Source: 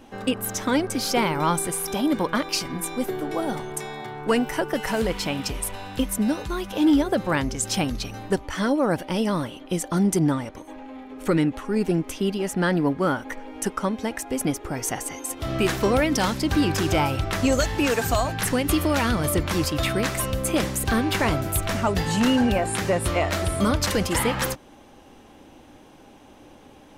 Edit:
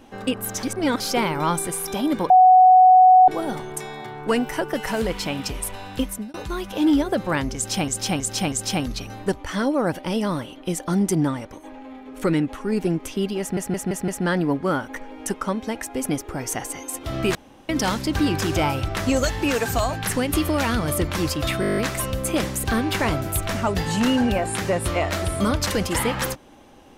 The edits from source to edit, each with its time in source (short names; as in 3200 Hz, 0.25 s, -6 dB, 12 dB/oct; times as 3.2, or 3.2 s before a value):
0.63–1 reverse
2.3–3.28 bleep 742 Hz -8 dBFS
6.02–6.34 fade out linear
7.56–7.88 loop, 4 plays
12.44 stutter 0.17 s, 5 plays
15.71–16.05 room tone
19.97 stutter 0.02 s, 9 plays